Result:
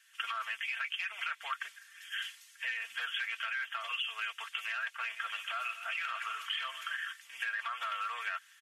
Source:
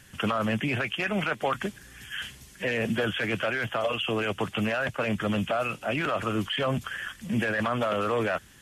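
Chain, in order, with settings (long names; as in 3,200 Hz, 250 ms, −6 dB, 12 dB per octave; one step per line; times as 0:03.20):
0:04.88–0:06.96: feedback delay that plays each chunk backwards 123 ms, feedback 62%, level −12 dB
high-pass filter 1,300 Hz 24 dB per octave
high-shelf EQ 5,400 Hz −6.5 dB
comb filter 4.4 ms, depth 63%
downward compressor, threshold −33 dBFS, peak gain reduction 7.5 dB
multiband upward and downward expander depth 40%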